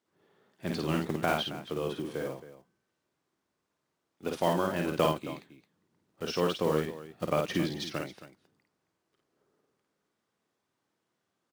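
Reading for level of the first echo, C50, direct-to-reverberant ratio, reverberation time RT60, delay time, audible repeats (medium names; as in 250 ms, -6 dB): -3.5 dB, no reverb, no reverb, no reverb, 52 ms, 2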